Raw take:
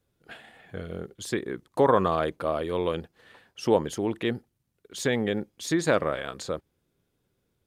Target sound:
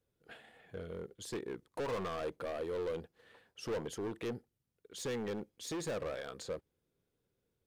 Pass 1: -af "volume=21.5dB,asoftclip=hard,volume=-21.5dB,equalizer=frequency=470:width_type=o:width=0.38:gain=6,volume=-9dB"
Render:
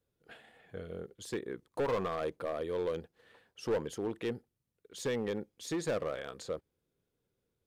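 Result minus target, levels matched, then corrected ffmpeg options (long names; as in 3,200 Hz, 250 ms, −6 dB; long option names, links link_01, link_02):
gain into a clipping stage and back: distortion −4 dB
-af "volume=28dB,asoftclip=hard,volume=-28dB,equalizer=frequency=470:width_type=o:width=0.38:gain=6,volume=-9dB"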